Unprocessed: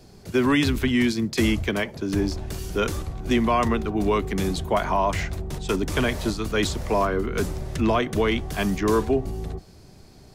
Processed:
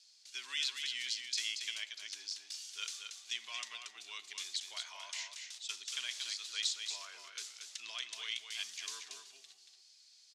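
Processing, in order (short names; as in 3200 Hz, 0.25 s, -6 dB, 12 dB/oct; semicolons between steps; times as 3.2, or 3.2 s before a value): Butterworth band-pass 5000 Hz, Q 1.1; echo 0.231 s -6 dB; reverb RT60 0.70 s, pre-delay 49 ms, DRR 18.5 dB; gain -3 dB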